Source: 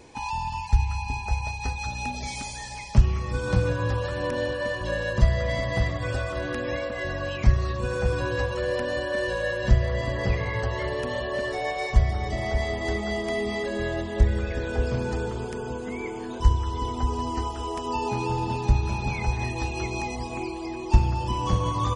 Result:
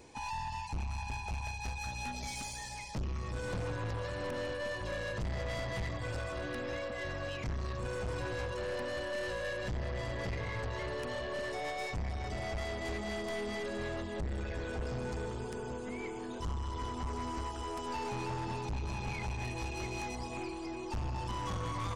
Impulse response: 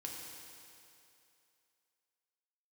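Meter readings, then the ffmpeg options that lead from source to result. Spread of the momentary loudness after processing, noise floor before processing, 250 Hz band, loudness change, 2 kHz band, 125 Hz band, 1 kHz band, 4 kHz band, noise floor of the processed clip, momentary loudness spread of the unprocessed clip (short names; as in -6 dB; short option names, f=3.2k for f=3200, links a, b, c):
3 LU, -34 dBFS, -10.0 dB, -11.0 dB, -9.0 dB, -13.0 dB, -9.5 dB, -8.0 dB, -42 dBFS, 8 LU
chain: -af "aeval=exprs='(tanh(25.1*val(0)+0.3)-tanh(0.3))/25.1':c=same,crystalizer=i=0.5:c=0,volume=-5.5dB"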